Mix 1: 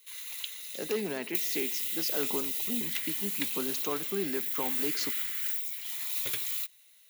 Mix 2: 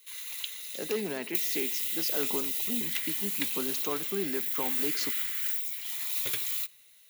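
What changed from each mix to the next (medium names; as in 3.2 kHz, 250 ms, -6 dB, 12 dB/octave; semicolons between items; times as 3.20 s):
background: send on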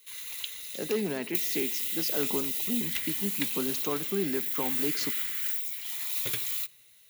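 master: add bass shelf 230 Hz +9 dB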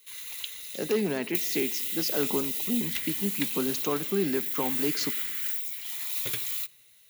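speech +3.0 dB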